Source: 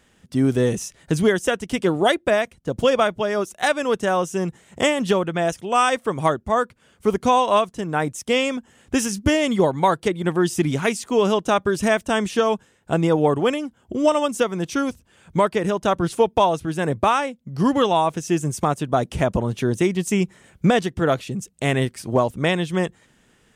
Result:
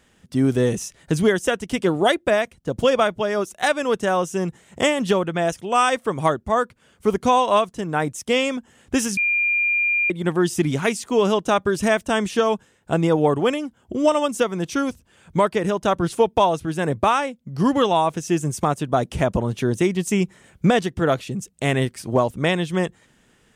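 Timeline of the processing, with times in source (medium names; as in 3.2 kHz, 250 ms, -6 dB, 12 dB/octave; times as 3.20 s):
9.17–10.10 s: bleep 2.4 kHz -17 dBFS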